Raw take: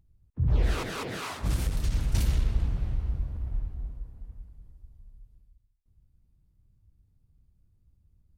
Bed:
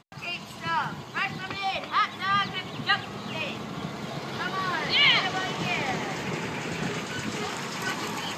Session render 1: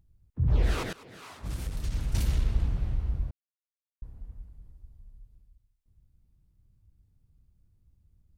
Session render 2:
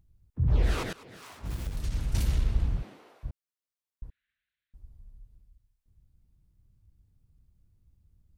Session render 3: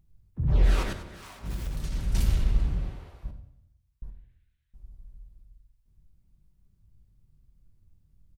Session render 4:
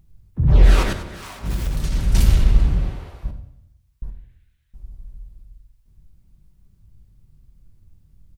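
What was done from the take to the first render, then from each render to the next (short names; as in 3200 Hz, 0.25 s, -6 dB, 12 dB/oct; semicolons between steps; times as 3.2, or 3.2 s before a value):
0.93–2.56 fade in, from -19.5 dB; 3.31–4.02 mute
1.16–1.77 self-modulated delay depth 0.65 ms; 2.81–3.23 HPF 190 Hz -> 570 Hz 24 dB/oct; 4.1–4.74 elliptic band-pass 1600–3900 Hz
feedback echo 93 ms, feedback 49%, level -15 dB; shoebox room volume 740 m³, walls furnished, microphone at 1.1 m
gain +9.5 dB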